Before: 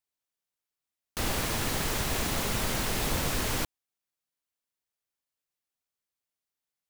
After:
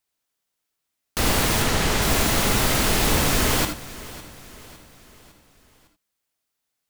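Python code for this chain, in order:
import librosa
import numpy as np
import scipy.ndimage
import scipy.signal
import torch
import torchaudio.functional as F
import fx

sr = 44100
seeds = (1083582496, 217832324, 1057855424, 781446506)

y = fx.high_shelf(x, sr, hz=11000.0, db=-11.0, at=(1.62, 2.02))
y = fx.echo_feedback(y, sr, ms=556, feedback_pct=49, wet_db=-18.0)
y = fx.rev_gated(y, sr, seeds[0], gate_ms=100, shape='rising', drr_db=6.5)
y = y * 10.0 ** (8.5 / 20.0)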